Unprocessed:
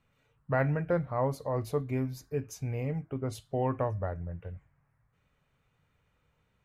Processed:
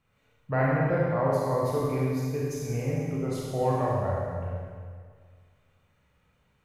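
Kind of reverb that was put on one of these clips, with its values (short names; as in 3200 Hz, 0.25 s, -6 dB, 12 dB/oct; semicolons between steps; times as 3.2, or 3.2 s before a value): Schroeder reverb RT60 1.9 s, combs from 30 ms, DRR -5 dB; gain -1 dB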